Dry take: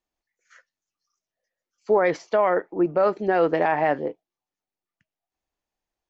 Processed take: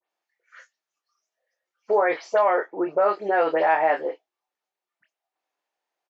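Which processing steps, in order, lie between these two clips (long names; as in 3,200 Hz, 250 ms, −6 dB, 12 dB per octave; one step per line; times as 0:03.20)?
every frequency bin delayed by itself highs late, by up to 104 ms
high-pass filter 540 Hz 12 dB per octave
double-tracking delay 25 ms −7 dB
in parallel at +1 dB: downward compressor, threshold −31 dBFS, peak gain reduction 13.5 dB
on the sum: high-shelf EQ 4,900 Hz −11.5 dB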